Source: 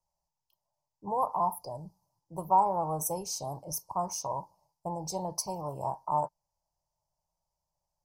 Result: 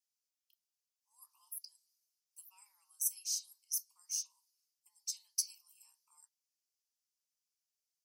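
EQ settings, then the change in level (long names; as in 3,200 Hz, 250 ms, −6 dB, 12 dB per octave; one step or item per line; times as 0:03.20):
Butterworth high-pass 2,300 Hz 36 dB per octave
0.0 dB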